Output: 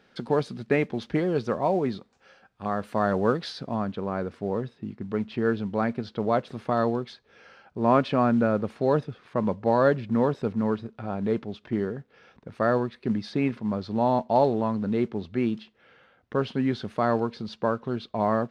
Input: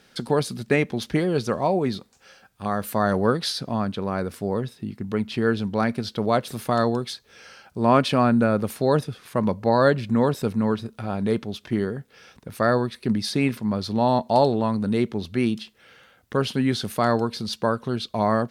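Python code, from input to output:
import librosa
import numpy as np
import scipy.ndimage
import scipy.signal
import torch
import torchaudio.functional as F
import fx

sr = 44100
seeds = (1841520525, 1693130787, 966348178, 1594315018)

y = fx.low_shelf(x, sr, hz=170.0, db=-7.0)
y = fx.mod_noise(y, sr, seeds[0], snr_db=24)
y = fx.spacing_loss(y, sr, db_at_10k=fx.steps((0.0, 23.0), (3.74, 29.0)))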